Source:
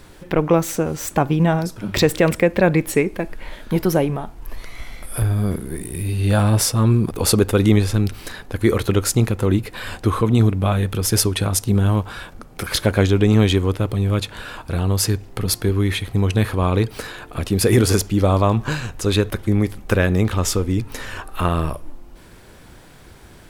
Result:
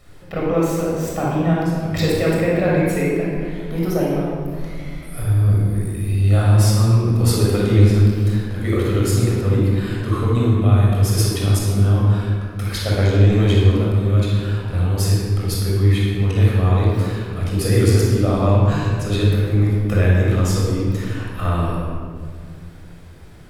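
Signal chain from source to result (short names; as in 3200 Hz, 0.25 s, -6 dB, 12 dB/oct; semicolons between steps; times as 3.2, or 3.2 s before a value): shoebox room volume 3400 m³, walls mixed, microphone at 6.4 m; gain -11 dB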